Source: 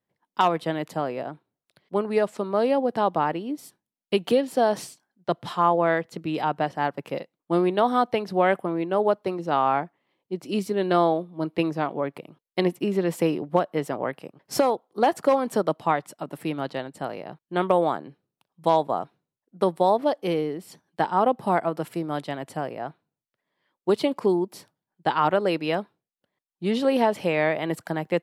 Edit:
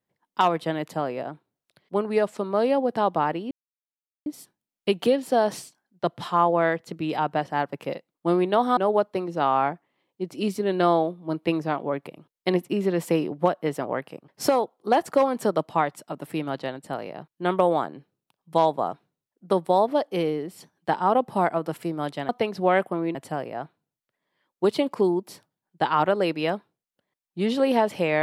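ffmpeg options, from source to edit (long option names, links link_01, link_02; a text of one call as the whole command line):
ffmpeg -i in.wav -filter_complex "[0:a]asplit=5[link_01][link_02][link_03][link_04][link_05];[link_01]atrim=end=3.51,asetpts=PTS-STARTPTS,afade=type=out:start_time=3.506:duration=0.004:curve=hsin,apad=pad_dur=0.75[link_06];[link_02]atrim=start=3.51:end=8.022,asetpts=PTS-STARTPTS,afade=type=in:duration=0.004:curve=hsin[link_07];[link_03]atrim=start=8.878:end=22.402[link_08];[link_04]atrim=start=8.018:end=8.882[link_09];[link_05]atrim=start=22.398[link_10];[link_06][link_07]concat=n=2:v=0:a=1[link_11];[link_11][link_08]acrossfade=duration=0.004:curve1=hsin:curve2=hsin[link_12];[link_12][link_09]acrossfade=duration=0.004:curve1=hsin:curve2=hsin[link_13];[link_13][link_10]acrossfade=duration=0.004:curve1=hsin:curve2=hsin" out.wav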